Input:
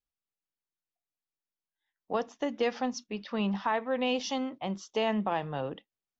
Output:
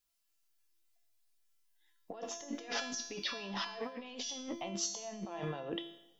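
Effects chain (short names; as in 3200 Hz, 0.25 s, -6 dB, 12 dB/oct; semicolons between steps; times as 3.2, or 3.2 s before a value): high shelf 2100 Hz +10 dB; 2.34–4.49 comb 7.1 ms, depth 55%; dynamic EQ 490 Hz, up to +6 dB, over -39 dBFS, Q 0.95; negative-ratio compressor -37 dBFS, ratio -1; resonator 340 Hz, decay 0.72 s, mix 90%; reverb RT60 1.2 s, pre-delay 45 ms, DRR 18.5 dB; gain +11.5 dB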